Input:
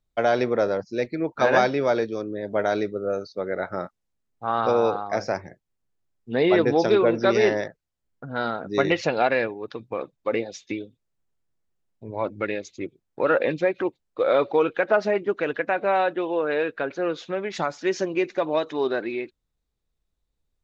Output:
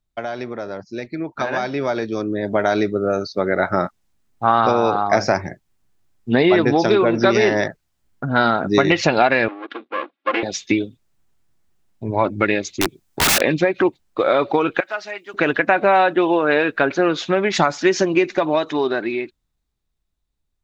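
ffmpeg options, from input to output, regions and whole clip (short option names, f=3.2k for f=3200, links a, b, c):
-filter_complex "[0:a]asettb=1/sr,asplit=3[a][b][c];[a]atrim=end=9.484[d];[b]atrim=start=9.48:end=10.43,asetpts=PTS-STARTPTS,afade=t=in:d=0.004:c=qsin,afade=t=out:st=0.946:d=0.004:c=qsin,aecho=1:1:3.6:0.89,atrim=end_sample=41895,aeval=exprs='max(val(0),0)':c=same,highpass=f=340:w=0.5412,highpass=f=340:w=1.3066,equalizer=f=590:t=q:w=4:g=-9,equalizer=f=900:t=q:w=4:g=-8,equalizer=f=1.8k:t=q:w=4:g=-3,lowpass=f=3.2k:w=0.5412,lowpass=f=3.2k:w=1.3066[e];[c]atrim=start=10.426[f];[d][e]acrossfade=d=0.004:c1=hsin:c2=qsin[g];[g][f]acrossfade=d=0.004:c1=qsin:c2=hsin,asettb=1/sr,asplit=3[h][i][j];[h]atrim=end=12.814[k];[i]atrim=start=12.81:end=13.42,asetpts=PTS-STARTPTS,afade=t=in:d=0.004:c=qsin,afade=t=out:st=0.606:d=0.004:c=qsin,highshelf=f=4k:g=8.5,aeval=exprs='(mod(14.1*val(0)+1,2)-1)/14.1':c=same[l];[j]atrim=start=13.416[m];[k][l]acrossfade=d=0.004:c1=hsin:c2=qsin[n];[n][m]acrossfade=d=0.004:c1=qsin:c2=hsin,asettb=1/sr,asplit=3[o][p][q];[o]atrim=end=14.804[r];[p]atrim=start=14.8:end=15.34,asetpts=PTS-STARTPTS,afade=t=in:d=0.004:c=qsin,afade=t=out:st=0.536:d=0.004:c=qsin,acrossover=split=3400[s][t];[t]acompressor=threshold=-49dB:ratio=4:attack=1:release=60[u];[s][u]amix=inputs=2:normalize=0,aderivative[v];[q]atrim=start=15.336[w];[r][v]acrossfade=d=0.004:c1=hsin:c2=qsin[x];[x][w]acrossfade=d=0.004:c1=qsin:c2=hsin,acompressor=threshold=-23dB:ratio=6,equalizer=f=490:t=o:w=0.34:g=-8,dynaudnorm=f=240:g=17:m=14.5dB,volume=1dB"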